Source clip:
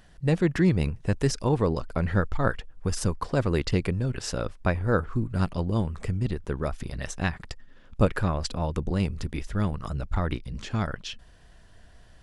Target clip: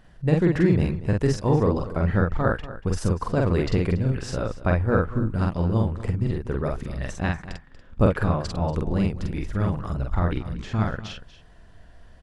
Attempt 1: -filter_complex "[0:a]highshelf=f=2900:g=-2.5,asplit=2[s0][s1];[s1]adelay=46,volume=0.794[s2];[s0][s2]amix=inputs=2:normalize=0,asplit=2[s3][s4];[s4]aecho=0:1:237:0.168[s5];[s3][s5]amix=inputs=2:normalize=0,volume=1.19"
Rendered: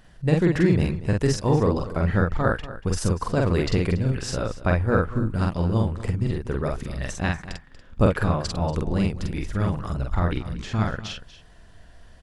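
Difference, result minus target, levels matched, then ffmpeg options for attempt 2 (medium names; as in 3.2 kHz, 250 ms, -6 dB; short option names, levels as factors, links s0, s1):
8 kHz band +6.0 dB
-filter_complex "[0:a]highshelf=f=2900:g=-9.5,asplit=2[s0][s1];[s1]adelay=46,volume=0.794[s2];[s0][s2]amix=inputs=2:normalize=0,asplit=2[s3][s4];[s4]aecho=0:1:237:0.168[s5];[s3][s5]amix=inputs=2:normalize=0,volume=1.19"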